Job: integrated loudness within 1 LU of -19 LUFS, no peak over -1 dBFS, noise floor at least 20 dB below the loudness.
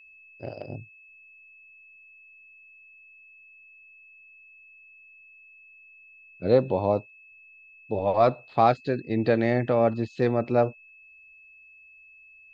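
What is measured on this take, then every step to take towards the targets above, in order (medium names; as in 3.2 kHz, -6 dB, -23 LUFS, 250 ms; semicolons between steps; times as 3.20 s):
steady tone 2.6 kHz; tone level -50 dBFS; loudness -24.5 LUFS; peak level -7.5 dBFS; loudness target -19.0 LUFS
-> band-stop 2.6 kHz, Q 30; trim +5.5 dB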